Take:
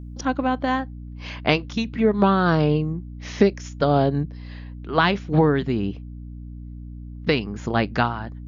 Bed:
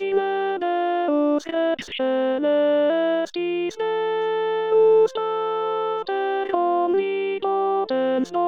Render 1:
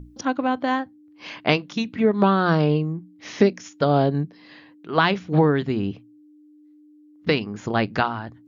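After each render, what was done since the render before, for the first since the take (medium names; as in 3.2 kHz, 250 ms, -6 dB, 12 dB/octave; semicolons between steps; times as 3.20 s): hum notches 60/120/180/240 Hz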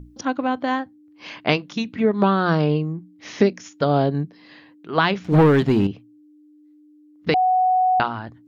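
5.24–5.87 s: waveshaping leveller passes 2; 7.34–8.00 s: bleep 741 Hz -14.5 dBFS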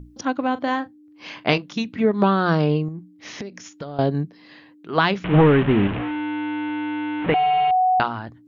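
0.51–1.58 s: doubling 37 ms -14 dB; 2.88–3.99 s: compression 16:1, threshold -28 dBFS; 5.24–7.71 s: one-bit delta coder 16 kbps, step -20 dBFS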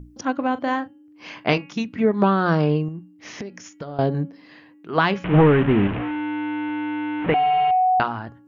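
peaking EQ 3.8 kHz -5.5 dB 0.59 oct; de-hum 278.7 Hz, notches 11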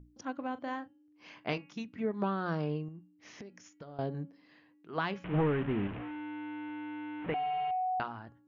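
trim -14.5 dB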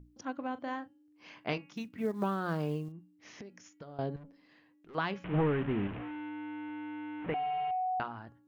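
1.73–2.92 s: short-mantissa float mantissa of 4-bit; 4.16–4.95 s: valve stage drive 48 dB, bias 0.4; 6.29–8.17 s: distance through air 95 m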